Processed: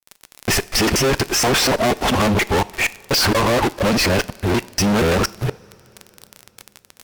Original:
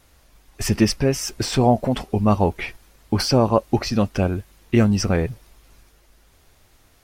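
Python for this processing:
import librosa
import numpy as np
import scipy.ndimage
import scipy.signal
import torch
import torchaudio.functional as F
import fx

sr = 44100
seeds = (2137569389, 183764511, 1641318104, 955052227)

y = fx.local_reverse(x, sr, ms=239.0)
y = fx.bass_treble(y, sr, bass_db=-10, treble_db=-9)
y = fx.dmg_crackle(y, sr, seeds[0], per_s=36.0, level_db=-39.0)
y = fx.fuzz(y, sr, gain_db=40.0, gate_db=-48.0)
y = fx.rev_double_slope(y, sr, seeds[1], early_s=0.52, late_s=4.7, knee_db=-18, drr_db=17.0)
y = y * 10.0 ** (-2.0 / 20.0)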